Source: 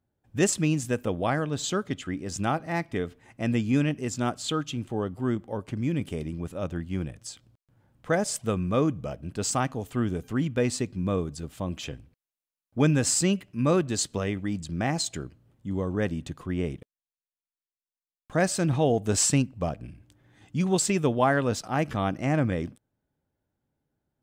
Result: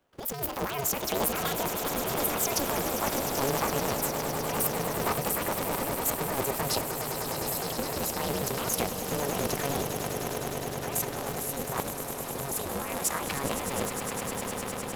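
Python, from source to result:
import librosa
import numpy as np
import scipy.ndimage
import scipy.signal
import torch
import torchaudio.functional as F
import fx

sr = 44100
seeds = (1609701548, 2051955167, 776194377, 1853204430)

p1 = fx.speed_glide(x, sr, from_pct=187, to_pct=137)
p2 = fx.over_compress(p1, sr, threshold_db=-34.0, ratio=-1.0)
p3 = scipy.signal.sosfilt(scipy.signal.butter(4, 280.0, 'highpass', fs=sr, output='sos'), p2)
p4 = p3 + fx.echo_swell(p3, sr, ms=102, loudest=8, wet_db=-11, dry=0)
p5 = p4 * np.sign(np.sin(2.0 * np.pi * 140.0 * np.arange(len(p4)) / sr))
y = p5 * librosa.db_to_amplitude(2.5)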